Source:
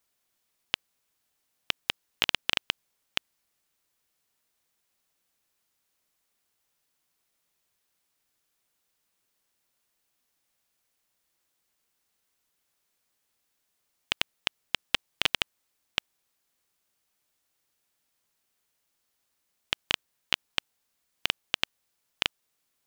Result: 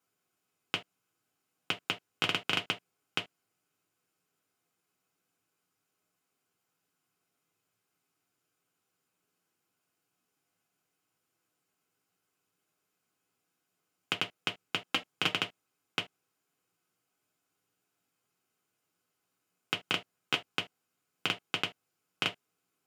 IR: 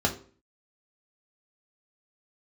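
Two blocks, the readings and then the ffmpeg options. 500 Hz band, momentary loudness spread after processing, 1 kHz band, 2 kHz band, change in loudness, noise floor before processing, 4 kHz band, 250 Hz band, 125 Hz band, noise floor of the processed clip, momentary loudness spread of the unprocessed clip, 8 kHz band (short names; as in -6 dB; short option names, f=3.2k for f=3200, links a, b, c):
+1.5 dB, 7 LU, +1.0 dB, -2.0 dB, -3.0 dB, -78 dBFS, -4.0 dB, +4.5 dB, +4.0 dB, -83 dBFS, 7 LU, -5.0 dB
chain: -filter_complex "[1:a]atrim=start_sample=2205,afade=t=out:st=0.2:d=0.01,atrim=end_sample=9261,asetrate=79380,aresample=44100[a];[0:a][a]afir=irnorm=-1:irlink=0,volume=-8.5dB"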